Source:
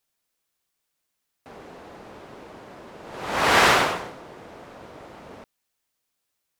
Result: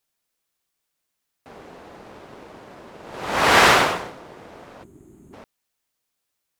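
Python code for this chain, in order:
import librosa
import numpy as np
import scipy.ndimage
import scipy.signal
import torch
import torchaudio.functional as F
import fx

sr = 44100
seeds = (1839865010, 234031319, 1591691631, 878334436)

p1 = fx.spec_box(x, sr, start_s=4.84, length_s=0.49, low_hz=430.0, high_hz=6300.0, gain_db=-22)
p2 = np.sign(p1) * np.maximum(np.abs(p1) - 10.0 ** (-39.5 / 20.0), 0.0)
y = p1 + (p2 * librosa.db_to_amplitude(-7.0))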